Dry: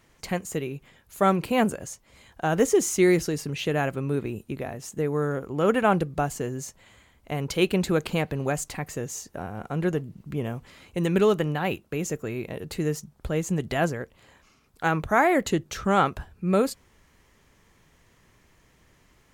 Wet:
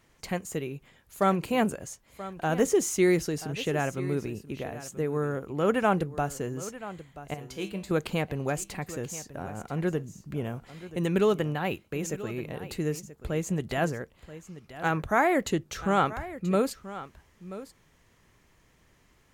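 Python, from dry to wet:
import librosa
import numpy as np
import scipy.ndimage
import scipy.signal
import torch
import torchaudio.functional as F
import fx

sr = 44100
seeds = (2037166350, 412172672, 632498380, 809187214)

p1 = fx.comb_fb(x, sr, f0_hz=66.0, decay_s=0.34, harmonics='odd', damping=0.0, mix_pct=80, at=(7.34, 7.91))
p2 = p1 + fx.echo_single(p1, sr, ms=982, db=-15.0, dry=0)
y = p2 * librosa.db_to_amplitude(-3.0)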